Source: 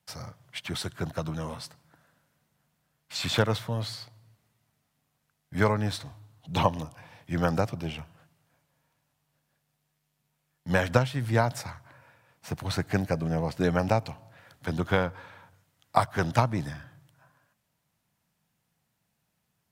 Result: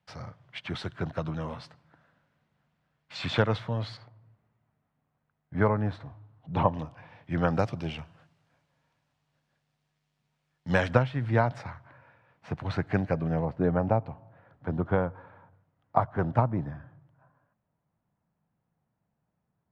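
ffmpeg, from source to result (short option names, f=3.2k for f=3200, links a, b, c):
-af "asetnsamples=n=441:p=0,asendcmd='3.97 lowpass f 1500;6.74 lowpass f 2700;7.59 lowpass f 5100;10.93 lowpass f 2400;13.45 lowpass f 1100',lowpass=3.1k"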